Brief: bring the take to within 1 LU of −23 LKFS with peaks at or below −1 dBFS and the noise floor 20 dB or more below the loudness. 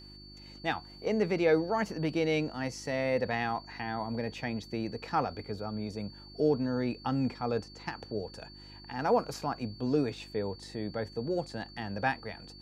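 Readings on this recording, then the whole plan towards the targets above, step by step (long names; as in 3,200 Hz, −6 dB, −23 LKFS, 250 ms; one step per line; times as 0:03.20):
mains hum 50 Hz; hum harmonics up to 350 Hz; level of the hum −51 dBFS; interfering tone 4,500 Hz; level of the tone −51 dBFS; integrated loudness −33.0 LKFS; sample peak −14.0 dBFS; target loudness −23.0 LKFS
→ hum removal 50 Hz, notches 7
notch filter 4,500 Hz, Q 30
level +10 dB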